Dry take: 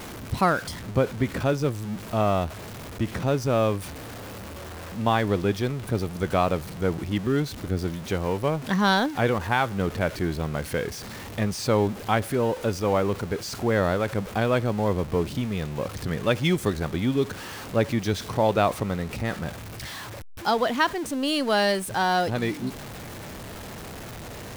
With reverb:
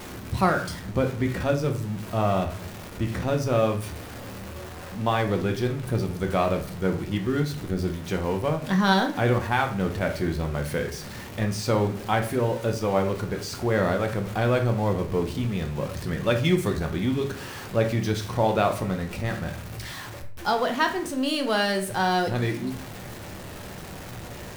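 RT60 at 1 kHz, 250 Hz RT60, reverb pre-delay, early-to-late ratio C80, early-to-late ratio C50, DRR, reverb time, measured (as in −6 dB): 0.50 s, 0.60 s, 5 ms, 15.5 dB, 10.0 dB, 3.5 dB, 0.50 s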